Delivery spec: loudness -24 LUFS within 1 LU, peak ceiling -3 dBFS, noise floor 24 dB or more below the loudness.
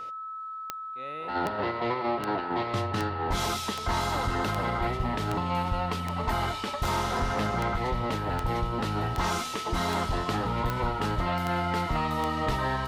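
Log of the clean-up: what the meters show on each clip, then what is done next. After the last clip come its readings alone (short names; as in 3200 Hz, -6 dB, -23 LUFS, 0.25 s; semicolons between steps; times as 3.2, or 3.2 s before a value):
clicks 16; steady tone 1300 Hz; tone level -35 dBFS; loudness -29.5 LUFS; peak -12.0 dBFS; loudness target -24.0 LUFS
-> de-click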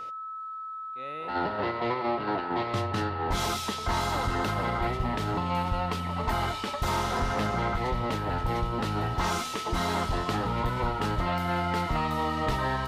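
clicks 0; steady tone 1300 Hz; tone level -35 dBFS
-> notch 1300 Hz, Q 30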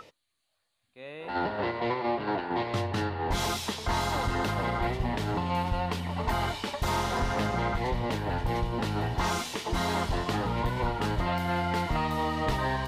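steady tone none; loudness -30.0 LUFS; peak -18.5 dBFS; loudness target -24.0 LUFS
-> gain +6 dB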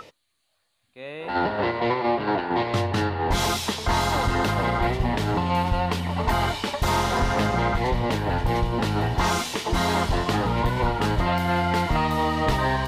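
loudness -24.0 LUFS; peak -12.5 dBFS; noise floor -72 dBFS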